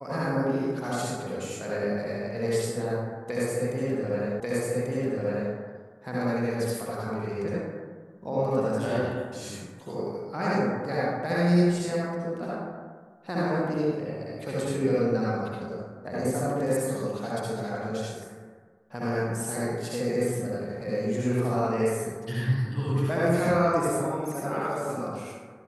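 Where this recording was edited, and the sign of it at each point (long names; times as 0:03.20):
0:04.40: the same again, the last 1.14 s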